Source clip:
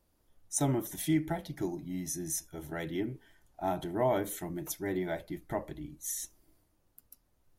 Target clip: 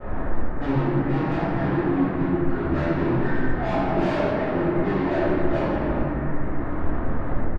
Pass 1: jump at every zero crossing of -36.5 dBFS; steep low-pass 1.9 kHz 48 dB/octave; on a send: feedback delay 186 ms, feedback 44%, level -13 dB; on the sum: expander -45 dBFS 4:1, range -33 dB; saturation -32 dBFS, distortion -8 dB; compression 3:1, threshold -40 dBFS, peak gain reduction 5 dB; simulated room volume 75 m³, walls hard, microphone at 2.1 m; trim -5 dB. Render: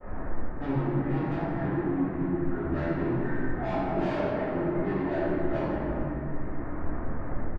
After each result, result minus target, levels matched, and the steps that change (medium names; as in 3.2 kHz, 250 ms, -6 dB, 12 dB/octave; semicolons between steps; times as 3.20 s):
compression: peak gain reduction +5 dB; jump at every zero crossing: distortion -6 dB
remove: compression 3:1, threshold -40 dBFS, peak gain reduction 5 dB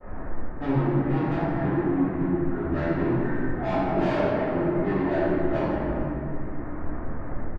jump at every zero crossing: distortion -6 dB
change: jump at every zero crossing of -28.5 dBFS